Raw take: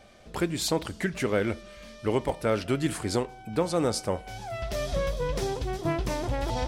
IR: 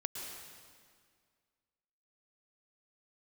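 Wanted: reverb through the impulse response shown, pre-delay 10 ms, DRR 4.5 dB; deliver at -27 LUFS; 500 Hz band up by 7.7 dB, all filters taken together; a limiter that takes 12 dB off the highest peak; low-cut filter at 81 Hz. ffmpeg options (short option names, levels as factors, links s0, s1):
-filter_complex "[0:a]highpass=81,equalizer=f=500:t=o:g=9,alimiter=limit=0.112:level=0:latency=1,asplit=2[s0][s1];[1:a]atrim=start_sample=2205,adelay=10[s2];[s1][s2]afir=irnorm=-1:irlink=0,volume=0.562[s3];[s0][s3]amix=inputs=2:normalize=0,volume=1.12"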